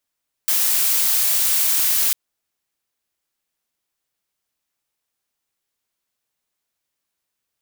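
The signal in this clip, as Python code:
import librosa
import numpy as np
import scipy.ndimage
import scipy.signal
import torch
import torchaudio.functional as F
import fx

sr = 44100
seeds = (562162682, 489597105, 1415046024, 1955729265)

y = fx.noise_colour(sr, seeds[0], length_s=1.65, colour='blue', level_db=-18.0)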